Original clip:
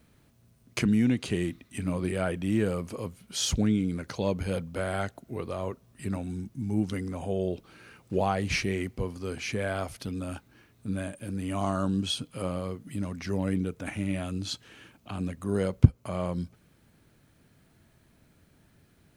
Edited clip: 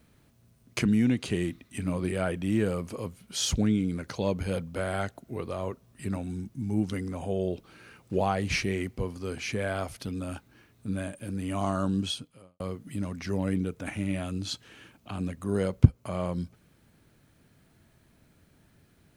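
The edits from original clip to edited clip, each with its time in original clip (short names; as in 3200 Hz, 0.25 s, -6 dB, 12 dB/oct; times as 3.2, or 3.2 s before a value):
12.05–12.6 fade out quadratic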